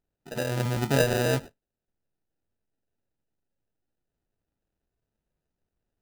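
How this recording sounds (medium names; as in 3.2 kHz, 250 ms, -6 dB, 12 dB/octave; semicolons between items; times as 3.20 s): aliases and images of a low sample rate 1.1 kHz, jitter 0%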